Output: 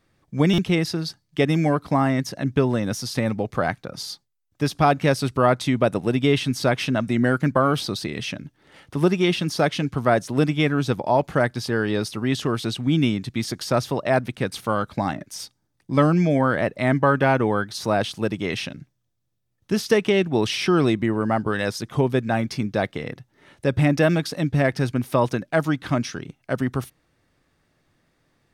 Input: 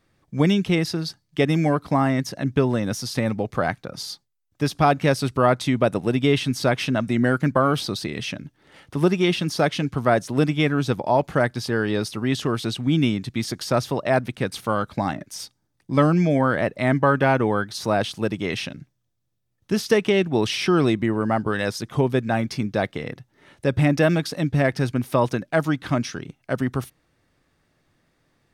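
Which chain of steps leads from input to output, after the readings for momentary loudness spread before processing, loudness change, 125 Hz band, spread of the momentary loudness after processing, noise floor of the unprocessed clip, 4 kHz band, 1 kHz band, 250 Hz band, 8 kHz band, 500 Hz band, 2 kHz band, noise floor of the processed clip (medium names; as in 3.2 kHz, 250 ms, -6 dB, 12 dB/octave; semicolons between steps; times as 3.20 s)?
10 LU, 0.0 dB, 0.0 dB, 10 LU, -72 dBFS, 0.0 dB, 0.0 dB, 0.0 dB, 0.0 dB, 0.0 dB, 0.0 dB, -72 dBFS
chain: buffer glitch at 0.53 s, samples 256, times 8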